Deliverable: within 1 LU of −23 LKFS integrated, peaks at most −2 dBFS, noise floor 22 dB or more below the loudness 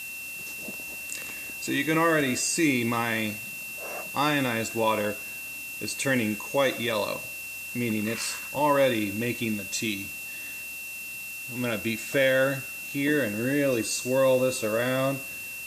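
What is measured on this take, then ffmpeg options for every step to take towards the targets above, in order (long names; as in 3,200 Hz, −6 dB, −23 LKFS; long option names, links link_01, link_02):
interfering tone 2,700 Hz; level of the tone −36 dBFS; background noise floor −38 dBFS; target noise floor −49 dBFS; integrated loudness −27.0 LKFS; sample peak −11.0 dBFS; target loudness −23.0 LKFS
→ -af "bandreject=frequency=2700:width=30"
-af "afftdn=noise_reduction=11:noise_floor=-38"
-af "volume=4dB"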